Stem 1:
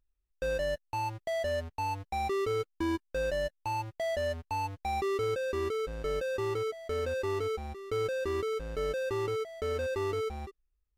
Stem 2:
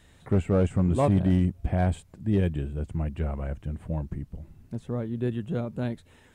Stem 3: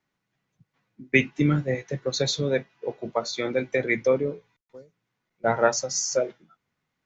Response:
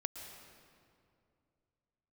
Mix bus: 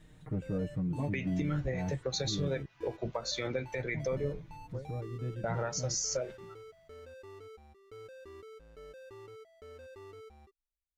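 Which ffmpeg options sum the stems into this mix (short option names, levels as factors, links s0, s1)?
-filter_complex "[0:a]volume=0.126[s0];[1:a]lowshelf=f=490:g=10.5,aecho=1:1:6.5:0.99,acompressor=threshold=0.00708:ratio=1.5,volume=0.316,asplit=3[s1][s2][s3];[s1]atrim=end=2.66,asetpts=PTS-STARTPTS,afade=t=out:st=2.656:d=0.004:c=hsin[s4];[s2]atrim=start=2.66:end=3.94,asetpts=PTS-STARTPTS,volume=0[s5];[s3]atrim=start=3.94,asetpts=PTS-STARTPTS,afade=t=in:d=0.004:c=hsin[s6];[s4][s5][s6]concat=n=3:v=0:a=1[s7];[2:a]asubboost=boost=11:cutoff=81,acompressor=threshold=0.02:ratio=2.5,volume=1.33[s8];[s0][s7][s8]amix=inputs=3:normalize=0,alimiter=limit=0.0668:level=0:latency=1:release=121"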